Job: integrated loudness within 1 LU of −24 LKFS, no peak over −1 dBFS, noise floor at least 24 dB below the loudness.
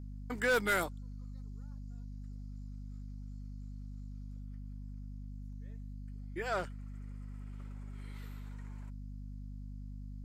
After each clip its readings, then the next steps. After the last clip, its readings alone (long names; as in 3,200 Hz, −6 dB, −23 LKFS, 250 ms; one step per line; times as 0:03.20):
share of clipped samples 0.2%; peaks flattened at −24.0 dBFS; mains hum 50 Hz; hum harmonics up to 250 Hz; level of the hum −42 dBFS; integrated loudness −41.0 LKFS; sample peak −24.0 dBFS; target loudness −24.0 LKFS
→ clipped peaks rebuilt −24 dBFS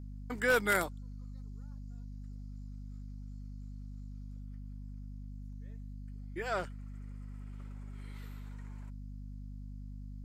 share of clipped samples 0.0%; mains hum 50 Hz; hum harmonics up to 250 Hz; level of the hum −42 dBFS
→ hum removal 50 Hz, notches 5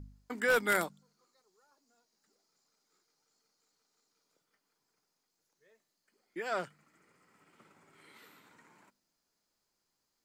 mains hum none found; integrated loudness −32.5 LKFS; sample peak −14.5 dBFS; target loudness −24.0 LKFS
→ level +8.5 dB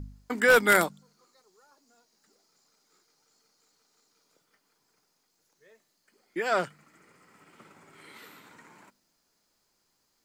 integrated loudness −24.5 LKFS; sample peak −6.0 dBFS; background noise floor −74 dBFS